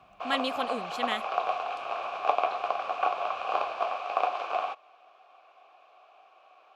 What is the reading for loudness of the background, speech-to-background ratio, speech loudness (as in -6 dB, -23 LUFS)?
-31.0 LUFS, -2.0 dB, -33.0 LUFS